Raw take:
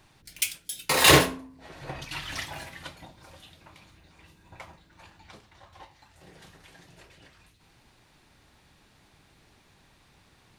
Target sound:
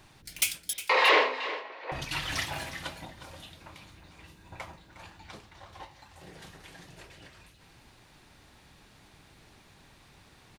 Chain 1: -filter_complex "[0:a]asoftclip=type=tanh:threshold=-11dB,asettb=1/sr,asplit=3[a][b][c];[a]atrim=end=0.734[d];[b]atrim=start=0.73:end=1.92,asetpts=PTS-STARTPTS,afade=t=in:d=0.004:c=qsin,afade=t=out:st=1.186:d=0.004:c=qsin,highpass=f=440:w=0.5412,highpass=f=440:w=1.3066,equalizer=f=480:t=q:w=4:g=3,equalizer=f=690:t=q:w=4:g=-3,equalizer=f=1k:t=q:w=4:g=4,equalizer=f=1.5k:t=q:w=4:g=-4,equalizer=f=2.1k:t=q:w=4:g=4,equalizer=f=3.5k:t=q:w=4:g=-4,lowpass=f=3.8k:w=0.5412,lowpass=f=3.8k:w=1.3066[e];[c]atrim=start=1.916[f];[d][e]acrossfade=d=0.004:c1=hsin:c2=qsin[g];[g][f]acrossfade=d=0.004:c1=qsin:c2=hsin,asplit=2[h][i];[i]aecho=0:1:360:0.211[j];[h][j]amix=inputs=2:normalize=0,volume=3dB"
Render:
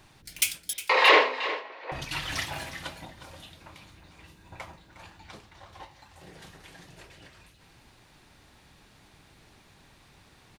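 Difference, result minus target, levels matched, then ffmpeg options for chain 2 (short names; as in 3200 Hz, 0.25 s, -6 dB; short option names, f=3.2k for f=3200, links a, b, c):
soft clip: distortion -7 dB
-filter_complex "[0:a]asoftclip=type=tanh:threshold=-18dB,asettb=1/sr,asplit=3[a][b][c];[a]atrim=end=0.734[d];[b]atrim=start=0.73:end=1.92,asetpts=PTS-STARTPTS,afade=t=in:d=0.004:c=qsin,afade=t=out:st=1.186:d=0.004:c=qsin,highpass=f=440:w=0.5412,highpass=f=440:w=1.3066,equalizer=f=480:t=q:w=4:g=3,equalizer=f=690:t=q:w=4:g=-3,equalizer=f=1k:t=q:w=4:g=4,equalizer=f=1.5k:t=q:w=4:g=-4,equalizer=f=2.1k:t=q:w=4:g=4,equalizer=f=3.5k:t=q:w=4:g=-4,lowpass=f=3.8k:w=0.5412,lowpass=f=3.8k:w=1.3066[e];[c]atrim=start=1.916[f];[d][e]acrossfade=d=0.004:c1=hsin:c2=qsin[g];[g][f]acrossfade=d=0.004:c1=qsin:c2=hsin,asplit=2[h][i];[i]aecho=0:1:360:0.211[j];[h][j]amix=inputs=2:normalize=0,volume=3dB"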